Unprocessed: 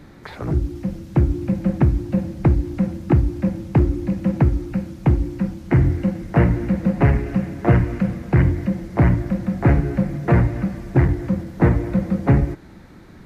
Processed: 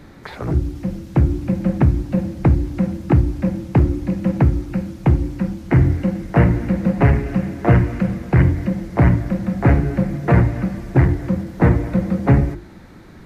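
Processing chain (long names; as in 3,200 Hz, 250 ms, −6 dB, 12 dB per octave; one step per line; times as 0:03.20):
mains-hum notches 50/100/150/200/250/300/350 Hz
level +2.5 dB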